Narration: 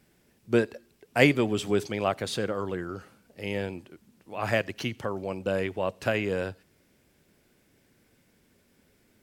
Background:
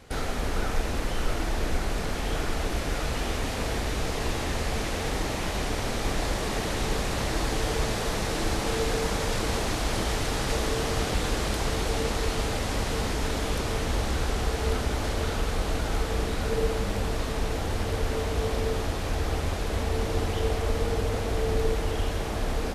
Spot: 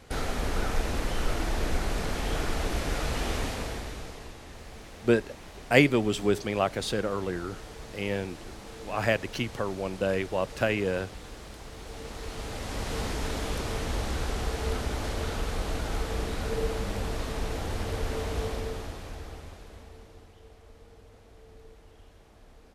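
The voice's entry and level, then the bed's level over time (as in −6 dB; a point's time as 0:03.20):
4.55 s, +0.5 dB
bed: 0:03.41 −1 dB
0:04.36 −16.5 dB
0:11.70 −16.5 dB
0:12.98 −3.5 dB
0:18.40 −3.5 dB
0:20.34 −26 dB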